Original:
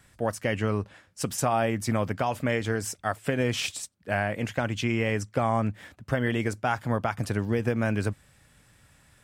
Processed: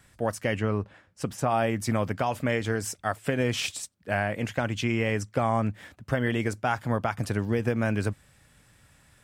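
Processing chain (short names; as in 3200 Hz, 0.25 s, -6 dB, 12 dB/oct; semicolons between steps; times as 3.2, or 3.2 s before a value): 0.59–1.48 high shelf 4400 Hz -> 3000 Hz -11 dB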